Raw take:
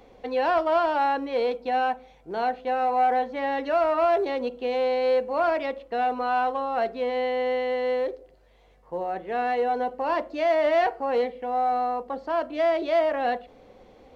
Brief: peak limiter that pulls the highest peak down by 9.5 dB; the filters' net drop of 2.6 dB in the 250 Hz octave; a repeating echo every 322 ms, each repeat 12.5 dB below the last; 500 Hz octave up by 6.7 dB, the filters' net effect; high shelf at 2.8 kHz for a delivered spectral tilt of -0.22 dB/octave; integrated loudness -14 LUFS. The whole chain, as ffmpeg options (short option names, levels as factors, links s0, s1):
-af "equalizer=f=250:t=o:g=-7,equalizer=f=500:t=o:g=9,highshelf=f=2800:g=8.5,alimiter=limit=0.126:level=0:latency=1,aecho=1:1:322|644|966:0.237|0.0569|0.0137,volume=3.55"